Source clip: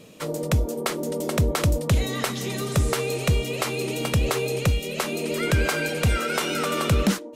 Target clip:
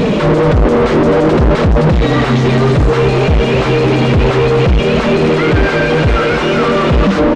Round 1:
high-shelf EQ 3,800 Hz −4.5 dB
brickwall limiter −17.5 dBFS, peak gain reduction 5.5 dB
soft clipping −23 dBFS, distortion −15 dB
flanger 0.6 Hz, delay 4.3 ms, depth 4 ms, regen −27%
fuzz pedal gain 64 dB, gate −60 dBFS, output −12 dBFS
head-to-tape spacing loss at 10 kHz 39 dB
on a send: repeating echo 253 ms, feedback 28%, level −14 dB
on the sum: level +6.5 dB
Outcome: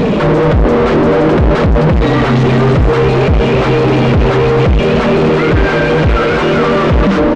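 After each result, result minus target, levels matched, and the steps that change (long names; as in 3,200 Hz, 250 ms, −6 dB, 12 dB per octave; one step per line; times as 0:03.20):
soft clipping: distortion +17 dB; 8,000 Hz band −3.5 dB
change: soft clipping −13 dBFS, distortion −31 dB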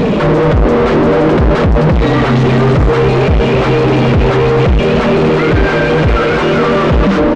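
8,000 Hz band −3.5 dB
change: high-shelf EQ 3,800 Hz +6 dB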